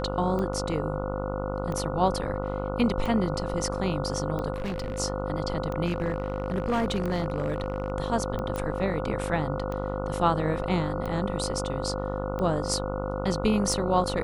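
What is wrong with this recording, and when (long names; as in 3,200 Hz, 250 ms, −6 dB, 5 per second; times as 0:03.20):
mains buzz 50 Hz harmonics 29 −32 dBFS
scratch tick 45 rpm −21 dBFS
whistle 520 Hz −33 dBFS
0:04.54–0:05.00: clipping −27.5 dBFS
0:05.85–0:07.90: clipping −21.5 dBFS
0:08.56: click −19 dBFS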